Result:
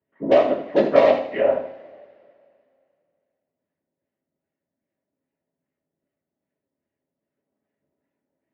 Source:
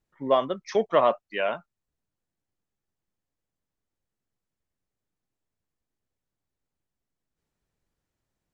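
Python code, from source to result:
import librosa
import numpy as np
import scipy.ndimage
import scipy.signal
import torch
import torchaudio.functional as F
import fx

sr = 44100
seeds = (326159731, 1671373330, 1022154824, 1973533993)

p1 = np.where(x < 0.0, 10.0 ** (-7.0 / 20.0) * x, x)
p2 = fx.filter_lfo_lowpass(p1, sr, shape='sine', hz=2.5, low_hz=870.0, high_hz=1900.0, q=0.91)
p3 = (np.mod(10.0 ** (13.5 / 20.0) * p2 + 1.0, 2.0) - 1.0) / 10.0 ** (13.5 / 20.0)
p4 = p2 + (p3 * librosa.db_to_amplitude(-8.0))
p5 = fx.whisperise(p4, sr, seeds[0])
p6 = fx.cabinet(p5, sr, low_hz=180.0, low_slope=12, high_hz=4300.0, hz=(260.0, 370.0, 580.0, 1200.0, 2000.0, 2800.0), db=(10, 5, 9, -6, 7, 5))
p7 = p6 + fx.echo_feedback(p6, sr, ms=80, feedback_pct=30, wet_db=-10.5, dry=0)
p8 = fx.rev_double_slope(p7, sr, seeds[1], early_s=0.38, late_s=2.4, knee_db=-22, drr_db=0.0)
y = p8 * librosa.db_to_amplitude(-2.5)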